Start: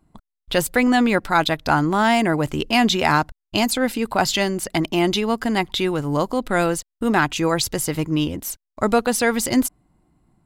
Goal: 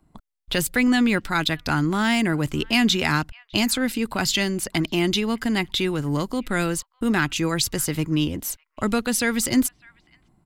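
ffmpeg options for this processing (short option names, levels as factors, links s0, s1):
-filter_complex "[0:a]acrossover=split=380|1300|3400[s0][s1][s2][s3];[s1]acompressor=threshold=0.0158:ratio=6[s4];[s2]aecho=1:1:604:0.0708[s5];[s0][s4][s5][s3]amix=inputs=4:normalize=0"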